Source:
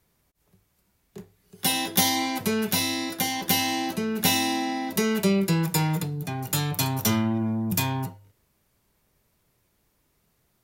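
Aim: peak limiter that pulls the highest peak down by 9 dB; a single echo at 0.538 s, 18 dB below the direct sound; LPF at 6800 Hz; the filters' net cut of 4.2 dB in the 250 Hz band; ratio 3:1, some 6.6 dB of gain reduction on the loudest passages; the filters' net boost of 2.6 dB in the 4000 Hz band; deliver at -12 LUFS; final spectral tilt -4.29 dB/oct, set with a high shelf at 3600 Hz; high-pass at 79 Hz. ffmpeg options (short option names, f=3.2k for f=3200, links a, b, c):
-af "highpass=79,lowpass=6.8k,equalizer=f=250:t=o:g=-5.5,highshelf=f=3.6k:g=-7.5,equalizer=f=4k:t=o:g=8.5,acompressor=threshold=-28dB:ratio=3,alimiter=limit=-23dB:level=0:latency=1,aecho=1:1:538:0.126,volume=20dB"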